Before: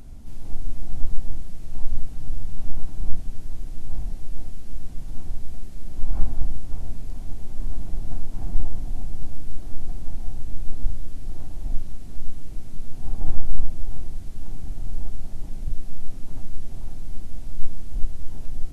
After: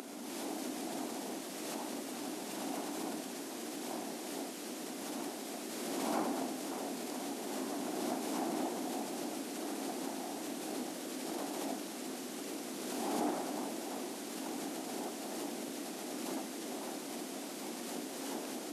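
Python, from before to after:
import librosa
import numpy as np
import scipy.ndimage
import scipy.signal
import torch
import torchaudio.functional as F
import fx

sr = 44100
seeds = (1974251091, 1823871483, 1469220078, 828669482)

y = scipy.signal.sosfilt(scipy.signal.butter(6, 260.0, 'highpass', fs=sr, output='sos'), x)
y = fx.pre_swell(y, sr, db_per_s=21.0)
y = y * librosa.db_to_amplitude(10.0)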